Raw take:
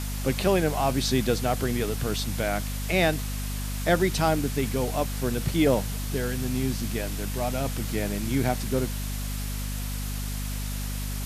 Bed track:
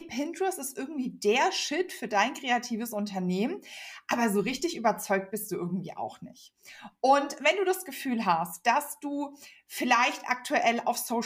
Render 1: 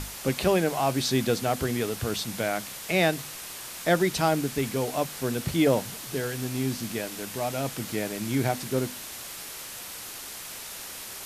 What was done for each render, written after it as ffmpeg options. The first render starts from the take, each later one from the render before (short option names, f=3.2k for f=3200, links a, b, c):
-af "bandreject=f=50:t=h:w=6,bandreject=f=100:t=h:w=6,bandreject=f=150:t=h:w=6,bandreject=f=200:t=h:w=6,bandreject=f=250:t=h:w=6"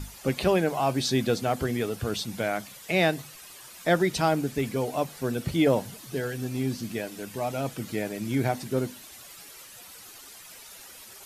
-af "afftdn=nr=11:nf=-40"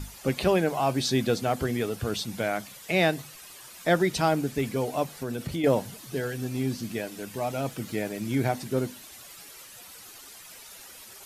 -filter_complex "[0:a]asettb=1/sr,asplit=3[a][b][c];[a]atrim=end=5.154[d];[b]atrim=start=5.15:end=5.64,asetpts=PTS-STARTPTS,afade=t=in:d=0.004:c=qsin,afade=t=out:st=0.486:d=0.004:c=qsin,acompressor=threshold=-27dB:ratio=4:attack=3.2:release=140:knee=1:detection=peak[e];[c]atrim=start=5.636[f];[d][e]acrossfade=d=0.004:c1=hsin:c2=qsin[g];[g][f]acrossfade=d=0.004:c1=qsin:c2=hsin,asettb=1/sr,asplit=3[h][i][j];[h]atrim=end=7.334[k];[i]atrim=start=7.33:end=8.23,asetpts=PTS-STARTPTS,afade=t=in:d=0.004:c=qsin,afade=t=out:st=0.896:d=0.004:c=qsin,aeval=exprs='val(0)*gte(abs(val(0)),0.00168)':c=same[l];[j]atrim=start=8.226[m];[k][l]acrossfade=d=0.004:c1=hsin:c2=qsin[n];[n][m]acrossfade=d=0.004:c1=qsin:c2=hsin"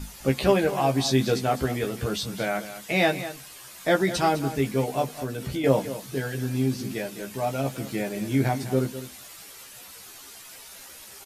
-filter_complex "[0:a]asplit=2[a][b];[b]adelay=15,volume=-3.5dB[c];[a][c]amix=inputs=2:normalize=0,aecho=1:1:205:0.224"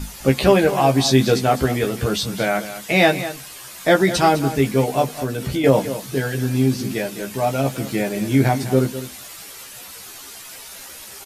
-af "volume=7dB,alimiter=limit=-2dB:level=0:latency=1"